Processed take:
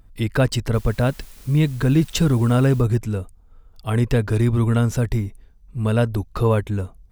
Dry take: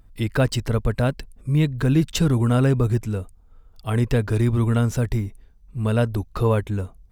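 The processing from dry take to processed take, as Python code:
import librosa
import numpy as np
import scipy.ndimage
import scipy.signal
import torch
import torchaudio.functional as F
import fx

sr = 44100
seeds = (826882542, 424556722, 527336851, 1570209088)

y = fx.dmg_noise_colour(x, sr, seeds[0], colour='white', level_db=-50.0, at=(0.73, 2.81), fade=0.02)
y = y * 10.0 ** (1.5 / 20.0)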